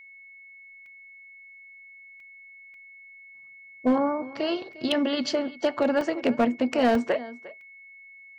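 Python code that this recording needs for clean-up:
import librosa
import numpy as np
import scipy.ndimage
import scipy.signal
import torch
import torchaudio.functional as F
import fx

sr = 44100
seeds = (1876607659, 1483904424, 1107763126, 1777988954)

y = fx.fix_declip(x, sr, threshold_db=-15.0)
y = fx.notch(y, sr, hz=2200.0, q=30.0)
y = fx.fix_interpolate(y, sr, at_s=(0.86, 2.2, 2.74, 4.73, 6.01, 6.95, 7.61), length_ms=2.2)
y = fx.fix_echo_inverse(y, sr, delay_ms=353, level_db=-19.0)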